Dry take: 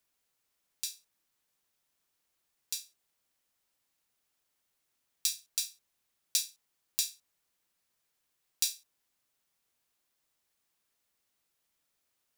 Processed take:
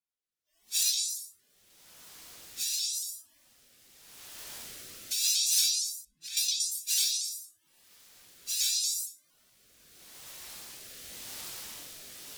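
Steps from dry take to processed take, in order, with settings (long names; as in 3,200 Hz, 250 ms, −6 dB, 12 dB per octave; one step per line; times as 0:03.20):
random phases in long frames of 200 ms
camcorder AGC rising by 16 dB per second
noise reduction from a noise print of the clip's start 22 dB
0:05.70–0:06.37: RIAA equalisation playback
echo through a band-pass that steps 116 ms, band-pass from 4,200 Hz, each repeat 0.7 octaves, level 0 dB
rotating-speaker cabinet horn 0.85 Hz
pitch modulation by a square or saw wave saw up 4.3 Hz, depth 100 cents
level +8 dB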